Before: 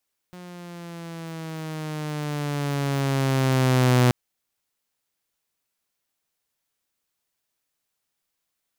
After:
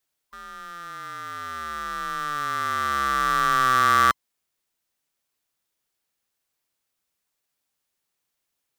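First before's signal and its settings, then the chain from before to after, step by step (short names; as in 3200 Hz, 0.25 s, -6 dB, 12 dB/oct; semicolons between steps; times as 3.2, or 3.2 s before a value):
gliding synth tone saw, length 3.78 s, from 180 Hz, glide -6.5 st, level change +24.5 dB, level -12 dB
band-swap scrambler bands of 1000 Hz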